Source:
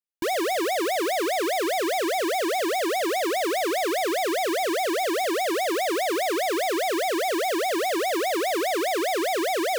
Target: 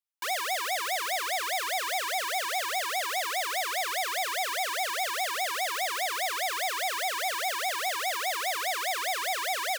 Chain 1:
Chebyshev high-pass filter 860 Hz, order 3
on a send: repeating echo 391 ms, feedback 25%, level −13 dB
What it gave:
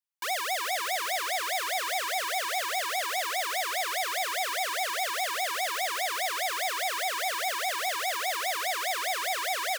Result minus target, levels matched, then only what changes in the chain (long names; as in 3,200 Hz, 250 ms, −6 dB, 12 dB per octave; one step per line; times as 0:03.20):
echo-to-direct +10 dB
change: repeating echo 391 ms, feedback 25%, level −23 dB